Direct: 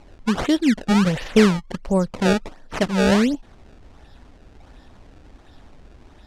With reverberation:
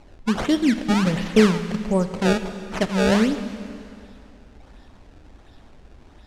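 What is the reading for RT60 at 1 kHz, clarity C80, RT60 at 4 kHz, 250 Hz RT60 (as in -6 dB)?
2.6 s, 11.0 dB, 2.4 s, 2.6 s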